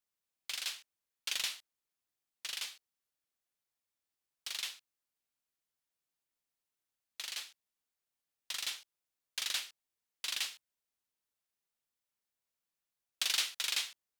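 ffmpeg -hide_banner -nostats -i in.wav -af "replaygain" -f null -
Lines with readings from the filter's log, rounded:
track_gain = +16.6 dB
track_peak = 0.098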